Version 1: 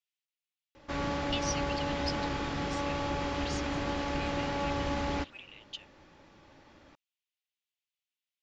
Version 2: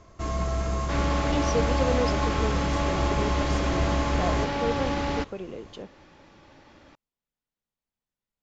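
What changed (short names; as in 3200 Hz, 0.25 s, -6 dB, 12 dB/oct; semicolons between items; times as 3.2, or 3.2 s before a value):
speech: remove resonant high-pass 2700 Hz, resonance Q 2.2; first sound: unmuted; second sound +4.5 dB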